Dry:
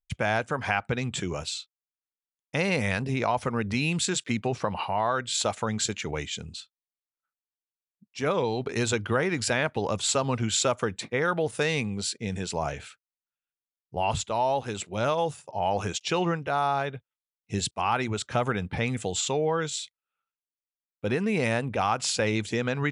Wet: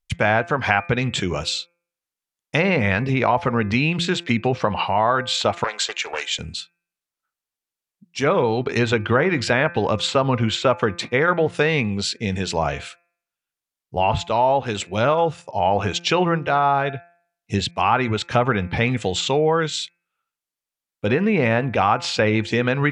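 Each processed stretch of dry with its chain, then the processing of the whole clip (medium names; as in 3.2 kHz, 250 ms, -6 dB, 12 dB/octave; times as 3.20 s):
5.64–6.39 s: high-pass 510 Hz 24 dB/octave + loudspeaker Doppler distortion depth 0.19 ms
whole clip: low-pass that closes with the level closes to 2.1 kHz, closed at -21.5 dBFS; de-hum 172.1 Hz, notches 15; dynamic bell 3 kHz, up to +3 dB, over -46 dBFS, Q 0.76; trim +7.5 dB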